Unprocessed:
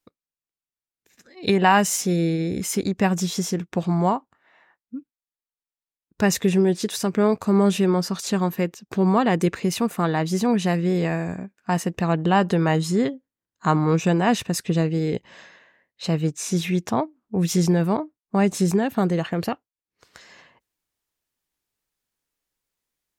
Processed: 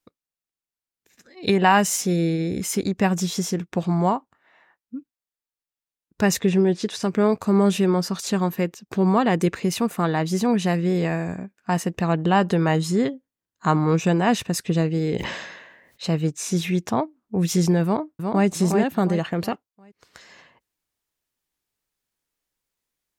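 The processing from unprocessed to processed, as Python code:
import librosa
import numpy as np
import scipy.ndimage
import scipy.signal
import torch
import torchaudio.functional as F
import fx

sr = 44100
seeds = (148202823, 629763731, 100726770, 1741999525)

y = fx.bessel_lowpass(x, sr, hz=5300.0, order=2, at=(6.39, 7.03))
y = fx.sustainer(y, sr, db_per_s=46.0, at=(14.99, 16.05))
y = fx.echo_throw(y, sr, start_s=17.83, length_s=0.64, ms=360, feedback_pct=35, wet_db=-4.5)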